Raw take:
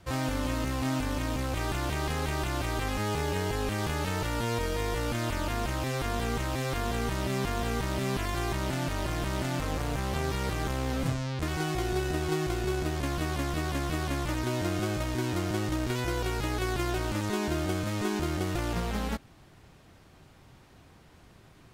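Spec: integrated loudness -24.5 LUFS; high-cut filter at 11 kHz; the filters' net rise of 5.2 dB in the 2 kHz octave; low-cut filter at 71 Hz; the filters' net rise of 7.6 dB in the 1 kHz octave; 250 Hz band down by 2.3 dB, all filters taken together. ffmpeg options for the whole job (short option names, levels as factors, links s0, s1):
-af "highpass=71,lowpass=11000,equalizer=f=250:t=o:g=-4,equalizer=f=1000:t=o:g=9,equalizer=f=2000:t=o:g=3.5,volume=1.68"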